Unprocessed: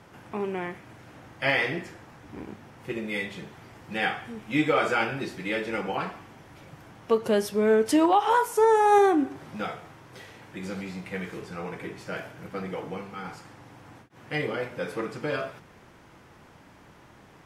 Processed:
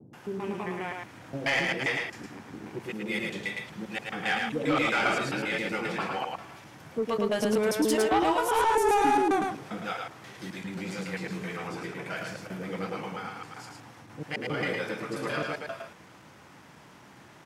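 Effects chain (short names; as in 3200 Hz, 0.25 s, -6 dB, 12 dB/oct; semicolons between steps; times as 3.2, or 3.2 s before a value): slices in reverse order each 0.133 s, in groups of 2; HPF 110 Hz; bell 6300 Hz +3 dB 2 oct; bands offset in time lows, highs 0.13 s, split 450 Hz; soft clip -19.5 dBFS, distortion -13 dB; on a send: echo 0.109 s -3.5 dB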